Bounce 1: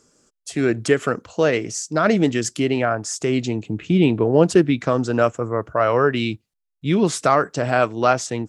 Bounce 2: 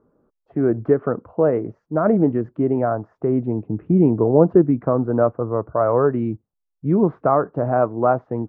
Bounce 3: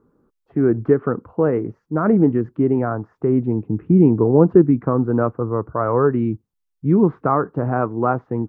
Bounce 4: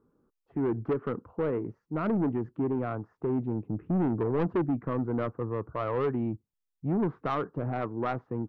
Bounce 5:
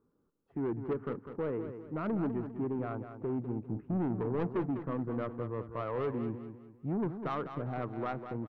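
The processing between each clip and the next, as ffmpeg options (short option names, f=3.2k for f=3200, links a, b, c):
-af "lowpass=f=1.1k:w=0.5412,lowpass=f=1.1k:w=1.3066,volume=1dB"
-af "equalizer=f=630:w=2.7:g=-10.5,volume=3dB"
-af "asoftclip=type=tanh:threshold=-14dB,volume=-8.5dB"
-af "aecho=1:1:200|400|600|800:0.335|0.121|0.0434|0.0156,volume=-5.5dB"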